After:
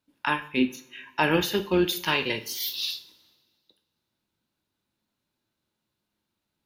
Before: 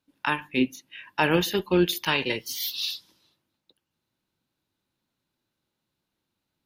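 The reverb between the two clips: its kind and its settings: two-slope reverb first 0.44 s, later 1.9 s, from -22 dB, DRR 7.5 dB; gain -1 dB

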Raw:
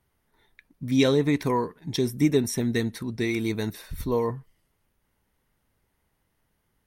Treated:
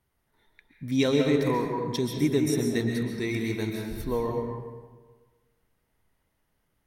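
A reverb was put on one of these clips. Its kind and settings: digital reverb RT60 1.4 s, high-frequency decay 0.6×, pre-delay 95 ms, DRR 1.5 dB; gain -3.5 dB

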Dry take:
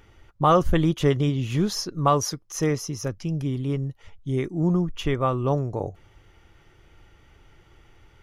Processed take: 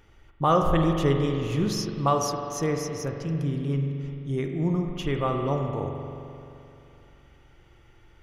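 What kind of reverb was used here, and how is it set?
spring tank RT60 2.8 s, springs 43 ms, chirp 50 ms, DRR 3 dB; gain -3.5 dB

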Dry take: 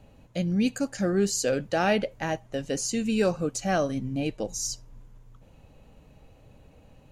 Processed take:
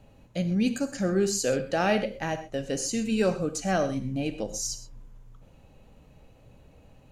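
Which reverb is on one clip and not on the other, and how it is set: non-linear reverb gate 0.15 s flat, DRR 9.5 dB; gain -1 dB

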